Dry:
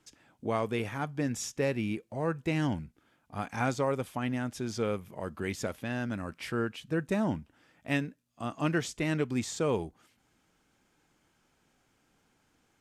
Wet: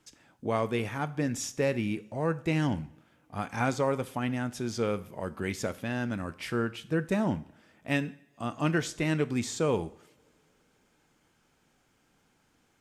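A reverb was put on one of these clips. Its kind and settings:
coupled-rooms reverb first 0.56 s, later 4 s, from −28 dB, DRR 13.5 dB
level +1.5 dB

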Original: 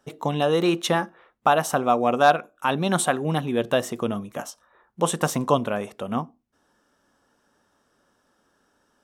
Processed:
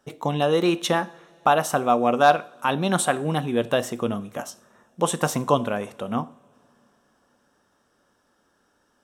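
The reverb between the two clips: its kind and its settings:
coupled-rooms reverb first 0.44 s, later 3.6 s, from −22 dB, DRR 14 dB

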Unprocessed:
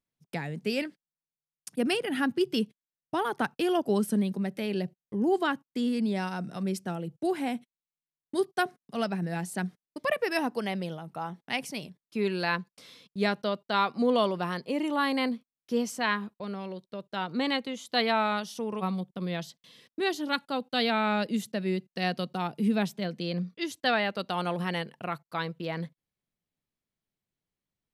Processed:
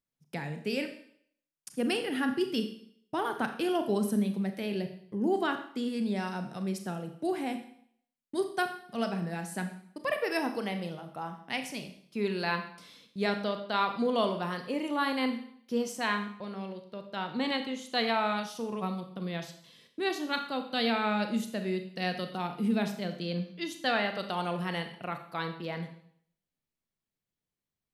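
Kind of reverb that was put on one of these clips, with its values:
four-comb reverb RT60 0.62 s, combs from 27 ms, DRR 6.5 dB
level −3 dB

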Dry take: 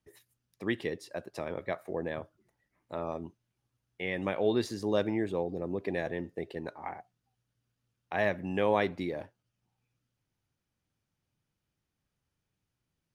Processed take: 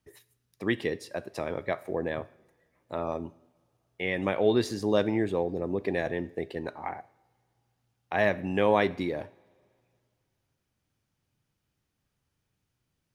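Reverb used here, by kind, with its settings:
coupled-rooms reverb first 0.62 s, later 2.5 s, from −19 dB, DRR 16.5 dB
level +4 dB

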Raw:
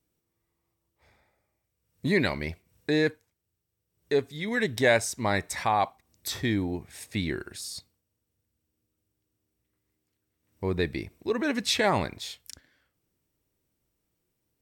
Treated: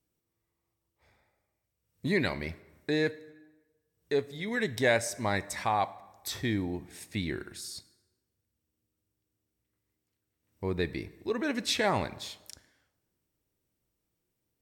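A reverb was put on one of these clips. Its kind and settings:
dense smooth reverb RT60 1.2 s, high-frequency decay 0.7×, DRR 16 dB
level −3.5 dB

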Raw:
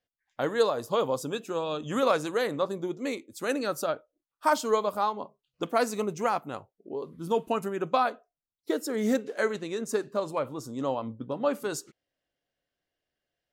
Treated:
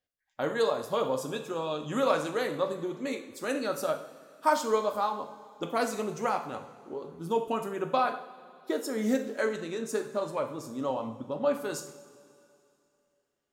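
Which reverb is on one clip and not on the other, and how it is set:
coupled-rooms reverb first 0.58 s, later 2.8 s, from −16 dB, DRR 4 dB
level −3 dB

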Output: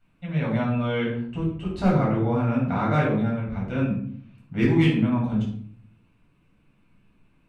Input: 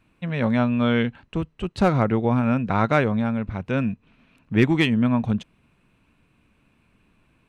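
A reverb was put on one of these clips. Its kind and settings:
rectangular room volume 790 cubic metres, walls furnished, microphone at 7.3 metres
level −13 dB

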